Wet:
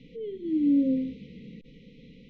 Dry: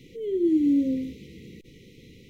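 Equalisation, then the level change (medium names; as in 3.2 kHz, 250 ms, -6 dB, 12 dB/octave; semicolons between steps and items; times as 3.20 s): Bessel low-pass 2.7 kHz, order 4; static phaser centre 360 Hz, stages 6; +3.0 dB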